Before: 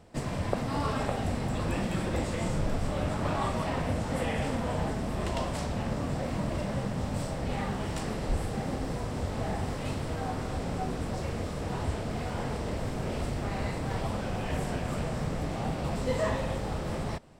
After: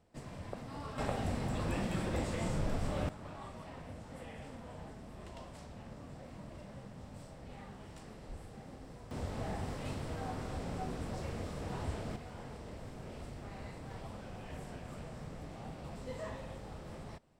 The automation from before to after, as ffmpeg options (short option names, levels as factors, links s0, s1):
-af "asetnsamples=n=441:p=0,asendcmd='0.98 volume volume -5dB;3.09 volume volume -17.5dB;9.11 volume volume -7dB;12.16 volume volume -14dB',volume=0.2"